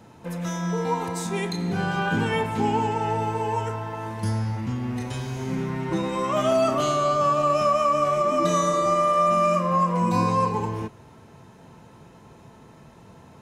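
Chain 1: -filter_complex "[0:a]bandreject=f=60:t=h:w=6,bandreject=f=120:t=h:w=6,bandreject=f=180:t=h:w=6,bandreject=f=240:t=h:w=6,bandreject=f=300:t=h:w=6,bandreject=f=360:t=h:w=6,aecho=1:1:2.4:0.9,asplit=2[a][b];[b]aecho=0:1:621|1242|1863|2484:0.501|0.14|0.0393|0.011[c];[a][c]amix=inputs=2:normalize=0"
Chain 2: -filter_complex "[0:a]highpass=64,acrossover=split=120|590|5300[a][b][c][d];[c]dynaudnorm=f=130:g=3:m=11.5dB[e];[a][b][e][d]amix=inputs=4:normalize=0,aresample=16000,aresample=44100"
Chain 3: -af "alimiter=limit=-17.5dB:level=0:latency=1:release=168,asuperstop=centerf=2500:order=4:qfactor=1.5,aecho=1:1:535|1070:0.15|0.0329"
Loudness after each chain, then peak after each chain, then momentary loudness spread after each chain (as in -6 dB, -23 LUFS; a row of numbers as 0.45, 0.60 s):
-21.5, -15.0, -27.0 LUFS; -7.5, -2.5, -16.0 dBFS; 12, 15, 6 LU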